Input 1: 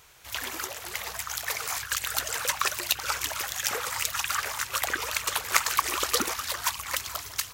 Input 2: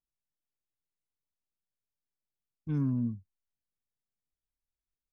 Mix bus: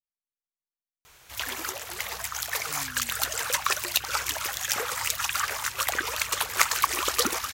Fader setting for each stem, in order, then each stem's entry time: +1.0, -17.5 dB; 1.05, 0.00 s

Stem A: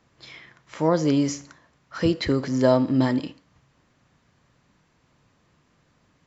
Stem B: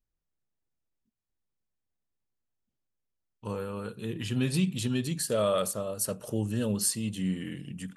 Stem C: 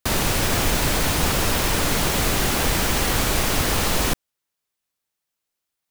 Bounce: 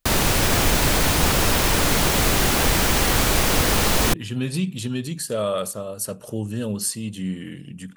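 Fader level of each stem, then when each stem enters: off, +2.5 dB, +2.0 dB; off, 0.00 s, 0.00 s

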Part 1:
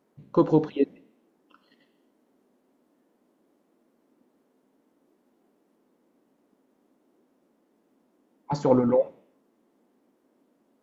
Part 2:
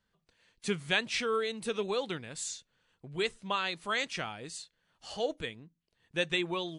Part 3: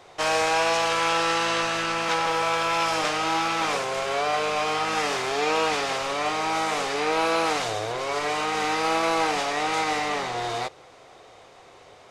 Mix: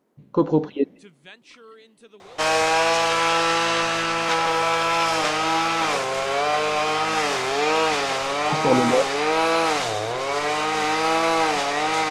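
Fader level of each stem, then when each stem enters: +1.0, -16.0, +3.0 dB; 0.00, 0.35, 2.20 s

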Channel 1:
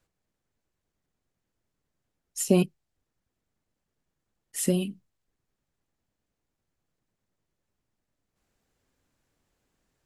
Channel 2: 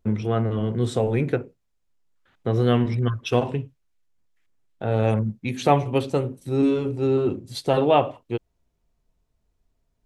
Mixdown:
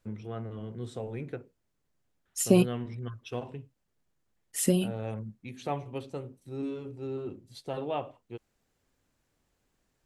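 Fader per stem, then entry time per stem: 0.0, -15.0 dB; 0.00, 0.00 s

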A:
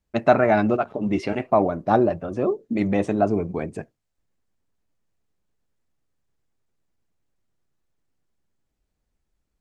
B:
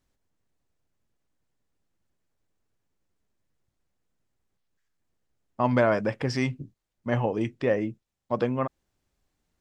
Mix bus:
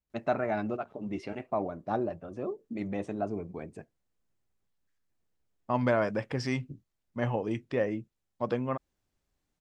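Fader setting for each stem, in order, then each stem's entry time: -12.5, -4.5 dB; 0.00, 0.10 s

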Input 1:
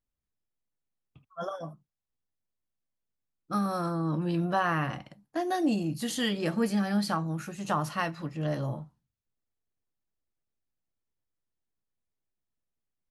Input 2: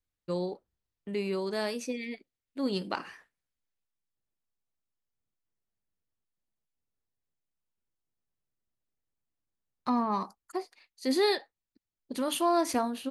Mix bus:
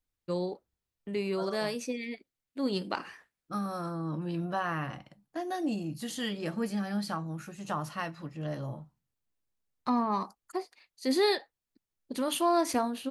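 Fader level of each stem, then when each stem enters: -5.0, 0.0 dB; 0.00, 0.00 s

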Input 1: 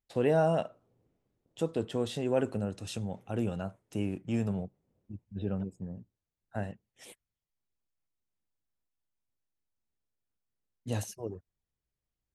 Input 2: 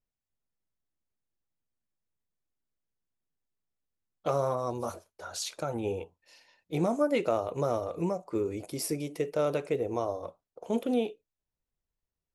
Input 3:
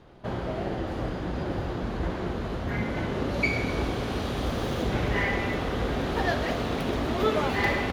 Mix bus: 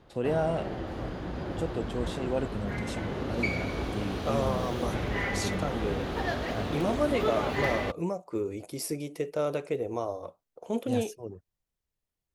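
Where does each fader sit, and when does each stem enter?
-2.0, -1.0, -4.5 dB; 0.00, 0.00, 0.00 s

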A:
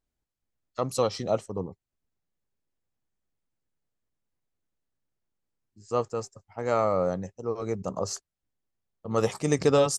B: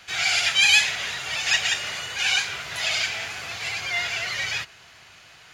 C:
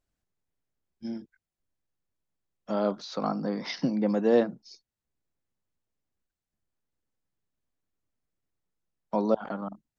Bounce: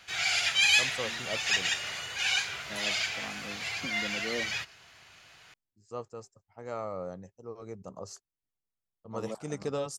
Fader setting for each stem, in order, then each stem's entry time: -12.0, -6.0, -15.0 dB; 0.00, 0.00, 0.00 s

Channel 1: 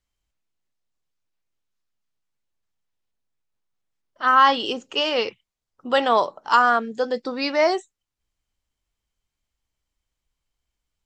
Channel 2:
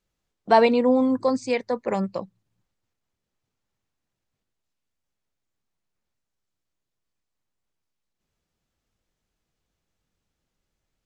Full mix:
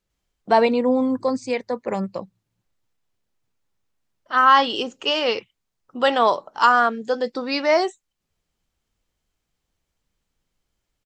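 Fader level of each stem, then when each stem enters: +1.0, 0.0 dB; 0.10, 0.00 s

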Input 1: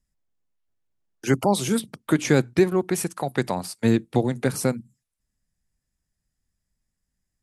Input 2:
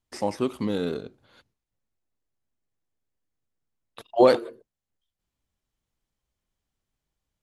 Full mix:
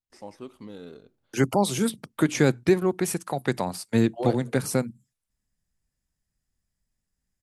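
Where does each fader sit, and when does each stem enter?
-1.5, -14.5 dB; 0.10, 0.00 s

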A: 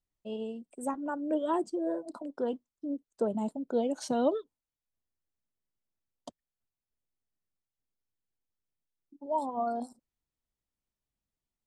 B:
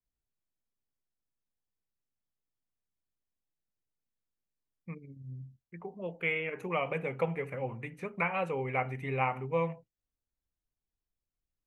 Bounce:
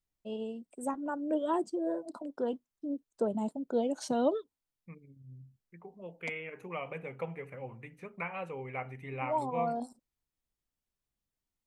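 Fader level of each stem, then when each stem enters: -1.0, -7.0 dB; 0.00, 0.00 s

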